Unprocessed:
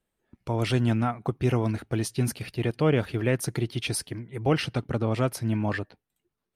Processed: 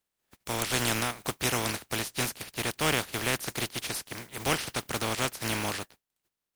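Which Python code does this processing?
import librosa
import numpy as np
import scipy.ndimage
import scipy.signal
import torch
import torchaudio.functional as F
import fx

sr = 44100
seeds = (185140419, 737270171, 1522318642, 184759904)

y = fx.spec_flatten(x, sr, power=0.31)
y = y * librosa.db_to_amplitude(-4.5)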